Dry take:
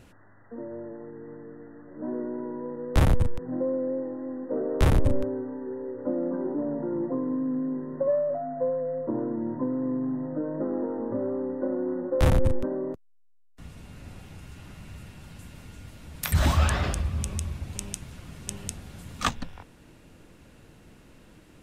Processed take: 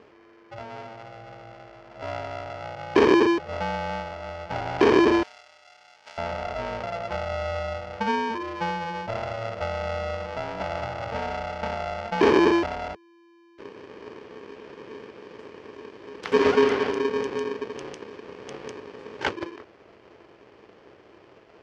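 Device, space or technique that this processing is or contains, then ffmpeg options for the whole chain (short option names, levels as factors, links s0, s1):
ring modulator pedal into a guitar cabinet: -filter_complex "[0:a]aeval=exprs='val(0)*sgn(sin(2*PI*340*n/s))':c=same,highpass=91,equalizer=f=160:t=q:w=4:g=-9,equalizer=f=250:t=q:w=4:g=-4,equalizer=f=420:t=q:w=4:g=6,equalizer=f=3800:t=q:w=4:g=-8,lowpass=f=4600:w=0.5412,lowpass=f=4600:w=1.3066,asettb=1/sr,asplit=3[s0][s1][s2];[s0]atrim=end=5.234[s3];[s1]atrim=start=5.23:end=6.18,asetpts=PTS-STARTPTS,afade=t=in:d=0.004:c=qsin,afade=t=out:st=0.946:d=0.004:c=qsin,aderivative[s4];[s2]atrim=start=6.176[s5];[s3][s4]acrossfade=d=0.004:c1=hsin:c2=qsin[s6];[s6][s5]acrossfade=d=0.004:c1=qsin:c2=hsin"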